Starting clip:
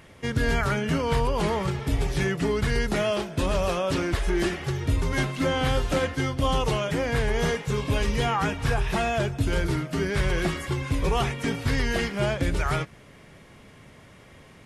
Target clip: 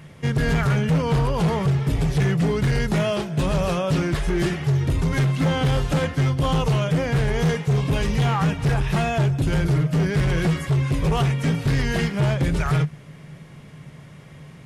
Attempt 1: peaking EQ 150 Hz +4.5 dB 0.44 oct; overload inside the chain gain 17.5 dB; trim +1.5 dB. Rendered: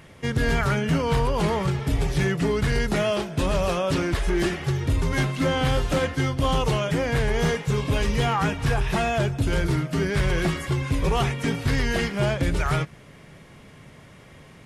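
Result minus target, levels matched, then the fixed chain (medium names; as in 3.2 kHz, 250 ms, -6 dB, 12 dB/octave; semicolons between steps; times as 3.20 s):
125 Hz band -2.5 dB
peaking EQ 150 Hz +16 dB 0.44 oct; overload inside the chain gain 17.5 dB; trim +1.5 dB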